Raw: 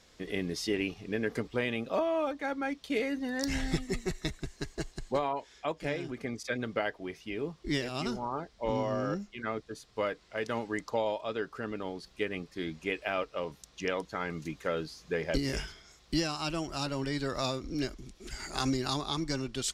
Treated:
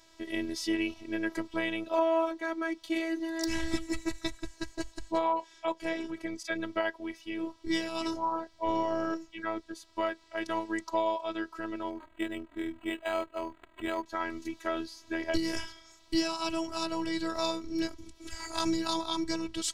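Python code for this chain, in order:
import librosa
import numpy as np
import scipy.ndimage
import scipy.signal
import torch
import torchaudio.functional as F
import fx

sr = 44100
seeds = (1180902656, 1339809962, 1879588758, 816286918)

y = fx.peak_eq(x, sr, hz=910.0, db=8.5, octaves=0.22)
y = fx.robotise(y, sr, hz=327.0)
y = fx.resample_linear(y, sr, factor=8, at=(11.9, 14.06))
y = y * librosa.db_to_amplitude(2.5)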